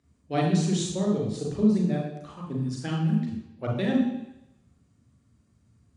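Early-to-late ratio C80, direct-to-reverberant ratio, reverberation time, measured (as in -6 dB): 6.5 dB, -1.0 dB, 0.85 s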